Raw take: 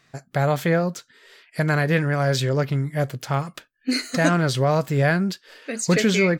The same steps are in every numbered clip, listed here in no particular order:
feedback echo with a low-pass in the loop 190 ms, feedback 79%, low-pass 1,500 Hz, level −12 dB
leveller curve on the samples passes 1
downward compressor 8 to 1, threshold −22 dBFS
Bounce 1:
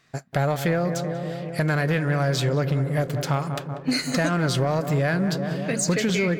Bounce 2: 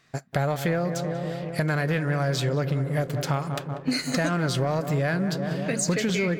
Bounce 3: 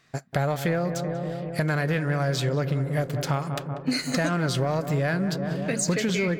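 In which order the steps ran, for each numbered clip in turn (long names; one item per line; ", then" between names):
feedback echo with a low-pass in the loop, then downward compressor, then leveller curve on the samples
feedback echo with a low-pass in the loop, then leveller curve on the samples, then downward compressor
leveller curve on the samples, then feedback echo with a low-pass in the loop, then downward compressor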